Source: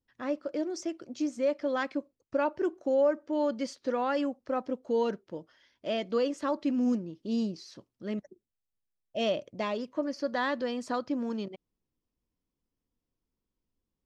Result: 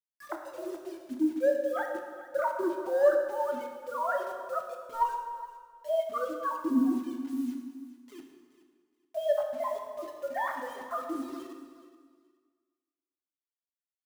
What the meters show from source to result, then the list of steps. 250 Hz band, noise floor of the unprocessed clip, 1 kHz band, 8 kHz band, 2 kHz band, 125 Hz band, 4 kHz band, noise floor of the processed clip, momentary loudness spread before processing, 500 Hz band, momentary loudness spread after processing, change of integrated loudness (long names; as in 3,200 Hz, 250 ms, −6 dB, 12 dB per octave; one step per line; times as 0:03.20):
−2.0 dB, below −85 dBFS, +3.0 dB, −4.0 dB, −1.0 dB, below −15 dB, −10.5 dB, below −85 dBFS, 10 LU, 0.0 dB, 16 LU, 0.0 dB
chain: three sine waves on the formant tracks
low-pass filter 2,000 Hz 6 dB per octave
noise reduction from a noise print of the clip's start 28 dB
low-shelf EQ 240 Hz −9 dB
in parallel at −8.5 dB: hard clipping −25 dBFS, distortion −9 dB
on the sum: phaser with its sweep stopped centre 1,100 Hz, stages 4
bit reduction 10 bits
on a send: repeating echo 423 ms, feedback 21%, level −16 dB
on the sum: dense smooth reverb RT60 1.6 s, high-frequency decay 0.75×, DRR 2.5 dB
level +6.5 dB